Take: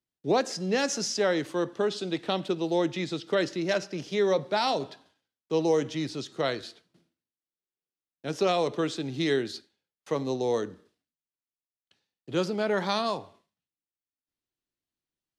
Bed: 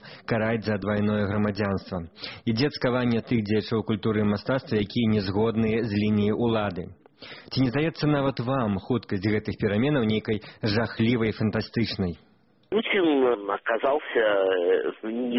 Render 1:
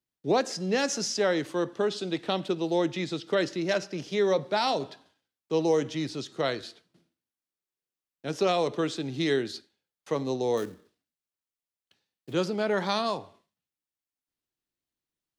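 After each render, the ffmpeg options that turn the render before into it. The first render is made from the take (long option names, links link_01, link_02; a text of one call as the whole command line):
ffmpeg -i in.wav -filter_complex "[0:a]asettb=1/sr,asplit=3[link_01][link_02][link_03];[link_01]atrim=end=10.574[link_04];[link_02]atrim=start=10.57:end=12.33,asetpts=PTS-STARTPTS,afade=type=in:duration=0.004:curve=qsin,afade=type=out:start_time=1.756:duration=0.004:curve=qsin,acrusher=bits=4:mode=log:mix=0:aa=0.000001[link_05];[link_03]atrim=start=12.326[link_06];[link_04][link_05]acrossfade=duration=0.004:curve1=hsin:curve2=qsin[link_07];[link_07][link_06]acrossfade=duration=0.004:curve1=qsin:curve2=hsin" out.wav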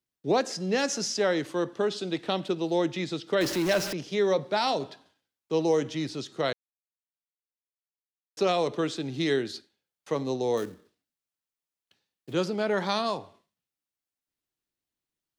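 ffmpeg -i in.wav -filter_complex "[0:a]asettb=1/sr,asplit=3[link_01][link_02][link_03];[link_01]atrim=end=3.414[link_04];[link_02]atrim=start=3.41:end=3.93,asetpts=PTS-STARTPTS,afade=type=in:duration=0.004:curve=qsin,afade=type=out:start_time=0.516:duration=0.004:curve=qsin,aeval=exprs='val(0)+0.5*0.0376*sgn(val(0))':channel_layout=same[link_05];[link_03]atrim=start=3.926[link_06];[link_04][link_05]acrossfade=duration=0.004:curve1=hsin:curve2=qsin[link_07];[link_07][link_06]acrossfade=duration=0.004:curve1=qsin:curve2=hsin,asplit=3[link_08][link_09][link_10];[link_08]atrim=end=6.53,asetpts=PTS-STARTPTS,afade=type=out:start_time=6.526:duration=0.004:curve=hsin[link_11];[link_09]atrim=start=6.53:end=8.37,asetpts=PTS-STARTPTS,volume=0[link_12];[link_10]atrim=start=8.37,asetpts=PTS-STARTPTS,afade=type=in:duration=0.004:curve=hsin[link_13];[link_11][link_12][link_13]concat=n=3:v=0:a=1" out.wav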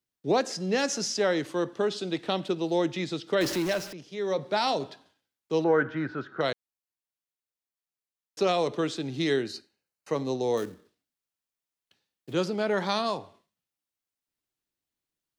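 ffmpeg -i in.wav -filter_complex "[0:a]asettb=1/sr,asplit=3[link_01][link_02][link_03];[link_01]atrim=end=5.644[link_04];[link_02]atrim=start=5.64:end=6.41,asetpts=PTS-STARTPTS,afade=type=in:duration=0.004:curve=qsin,afade=type=out:start_time=0.766:duration=0.004:curve=qsin,lowpass=frequency=1500:width_type=q:width=14[link_05];[link_03]atrim=start=6.406[link_06];[link_04][link_05]acrossfade=duration=0.004:curve1=hsin:curve2=qsin[link_07];[link_07][link_06]acrossfade=duration=0.004:curve1=qsin:curve2=hsin,asettb=1/sr,asplit=3[link_08][link_09][link_10];[link_08]atrim=end=9.454[link_11];[link_09]atrim=start=9.45:end=10.15,asetpts=PTS-STARTPTS,afade=type=in:duration=0.004:curve=qsin,afade=type=out:start_time=0.696:duration=0.004:curve=qsin,asuperstop=centerf=3400:order=4:qfactor=6[link_12];[link_10]atrim=start=10.146[link_13];[link_11][link_12]acrossfade=duration=0.004:curve1=hsin:curve2=qsin[link_14];[link_14][link_13]acrossfade=duration=0.004:curve1=qsin:curve2=hsin,asplit=3[link_15][link_16][link_17];[link_15]atrim=end=3.89,asetpts=PTS-STARTPTS,afade=type=out:start_time=3.55:duration=0.34:silence=0.354813[link_18];[link_16]atrim=start=3.89:end=4.16,asetpts=PTS-STARTPTS,volume=-9dB[link_19];[link_17]atrim=start=4.16,asetpts=PTS-STARTPTS,afade=type=in:duration=0.34:silence=0.354813[link_20];[link_18][link_19][link_20]concat=n=3:v=0:a=1" out.wav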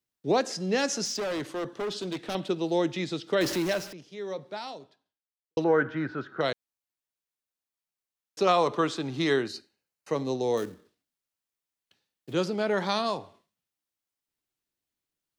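ffmpeg -i in.wav -filter_complex "[0:a]asettb=1/sr,asplit=3[link_01][link_02][link_03];[link_01]atrim=end=1.054[link_04];[link_02]atrim=start=1.05:end=2.35,asetpts=PTS-STARTPTS,afade=type=in:duration=0.004:curve=qsin,afade=type=out:start_time=1.296:duration=0.004:curve=qsin,asoftclip=type=hard:threshold=-28.5dB[link_05];[link_03]atrim=start=2.346[link_06];[link_04][link_05]acrossfade=duration=0.004:curve1=hsin:curve2=qsin[link_07];[link_07][link_06]acrossfade=duration=0.004:curve1=qsin:curve2=hsin,asettb=1/sr,asplit=3[link_08][link_09][link_10];[link_08]atrim=end=8.474[link_11];[link_09]atrim=start=8.47:end=9.48,asetpts=PTS-STARTPTS,afade=type=in:duration=0.004:curve=qsin,afade=type=out:start_time=1.006:duration=0.004:curve=qsin,equalizer=frequency=1100:width_type=o:width=0.88:gain=10[link_12];[link_10]atrim=start=9.476[link_13];[link_11][link_12]acrossfade=duration=0.004:curve1=hsin:curve2=qsin[link_14];[link_14][link_13]acrossfade=duration=0.004:curve1=qsin:curve2=hsin,asplit=2[link_15][link_16];[link_15]atrim=end=5.57,asetpts=PTS-STARTPTS,afade=type=out:start_time=3.73:duration=1.84:curve=qua[link_17];[link_16]atrim=start=5.57,asetpts=PTS-STARTPTS,afade=type=in:duration=0.004:curve=hsin[link_18];[link_17][link_18]concat=n=2:v=0:a=1" out.wav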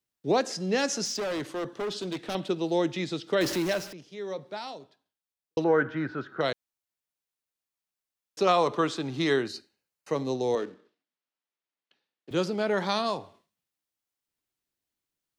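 ffmpeg -i in.wav -filter_complex "[0:a]asettb=1/sr,asplit=3[link_01][link_02][link_03];[link_01]atrim=end=10.554[link_04];[link_02]atrim=start=10.55:end=12.31,asetpts=PTS-STARTPTS,afade=type=in:duration=0.004:curve=qsin,afade=type=out:start_time=1.756:duration=0.004:curve=qsin,highpass=240,lowpass=3800[link_05];[link_03]atrim=start=12.306[link_06];[link_04][link_05]acrossfade=duration=0.004:curve1=hsin:curve2=qsin[link_07];[link_07][link_06]acrossfade=duration=0.004:curve1=qsin:curve2=hsin" out.wav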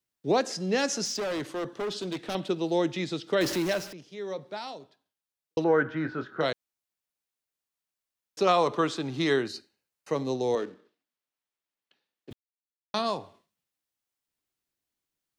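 ffmpeg -i in.wav -filter_complex "[0:a]asettb=1/sr,asplit=3[link_01][link_02][link_03];[link_01]atrim=end=6.024[link_04];[link_02]atrim=start=6.02:end=6.46,asetpts=PTS-STARTPTS,afade=type=in:duration=0.004:curve=qsin,afade=type=out:start_time=0.436:duration=0.004:curve=qsin,asplit=2[link_05][link_06];[link_06]adelay=25,volume=-9dB[link_07];[link_05][link_07]amix=inputs=2:normalize=0,atrim=end_sample=19404[link_08];[link_03]atrim=start=6.456[link_09];[link_04][link_08]acrossfade=duration=0.004:curve1=hsin:curve2=qsin[link_10];[link_10][link_09]acrossfade=duration=0.004:curve1=qsin:curve2=hsin,asplit=3[link_11][link_12][link_13];[link_11]atrim=end=12.33,asetpts=PTS-STARTPTS,afade=type=out:start_time=12.326:duration=0.004:curve=hsin[link_14];[link_12]atrim=start=12.33:end=12.94,asetpts=PTS-STARTPTS,volume=0[link_15];[link_13]atrim=start=12.94,asetpts=PTS-STARTPTS,afade=type=in:duration=0.004:curve=hsin[link_16];[link_14][link_15][link_16]concat=n=3:v=0:a=1" out.wav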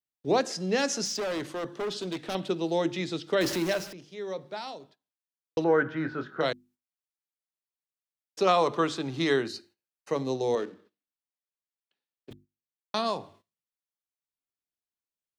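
ffmpeg -i in.wav -af "bandreject=frequency=50:width_type=h:width=6,bandreject=frequency=100:width_type=h:width=6,bandreject=frequency=150:width_type=h:width=6,bandreject=frequency=200:width_type=h:width=6,bandreject=frequency=250:width_type=h:width=6,bandreject=frequency=300:width_type=h:width=6,bandreject=frequency=350:width_type=h:width=6,agate=range=-12dB:threshold=-57dB:ratio=16:detection=peak" out.wav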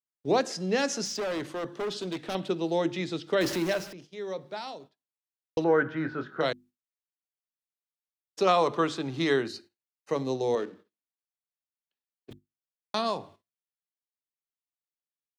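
ffmpeg -i in.wav -af "agate=range=-10dB:threshold=-50dB:ratio=16:detection=peak,adynamicequalizer=threshold=0.00501:dfrequency=3400:dqfactor=0.7:tfrequency=3400:tqfactor=0.7:attack=5:release=100:ratio=0.375:range=1.5:mode=cutabove:tftype=highshelf" out.wav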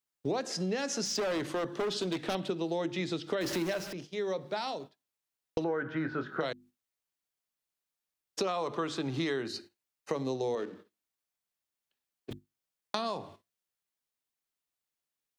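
ffmpeg -i in.wav -filter_complex "[0:a]asplit=2[link_01][link_02];[link_02]alimiter=limit=-21dB:level=0:latency=1:release=36,volume=-1dB[link_03];[link_01][link_03]amix=inputs=2:normalize=0,acompressor=threshold=-30dB:ratio=6" out.wav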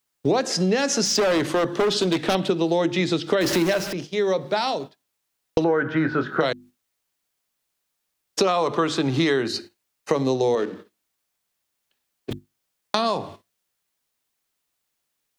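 ffmpeg -i in.wav -af "volume=11.5dB,alimiter=limit=-3dB:level=0:latency=1" out.wav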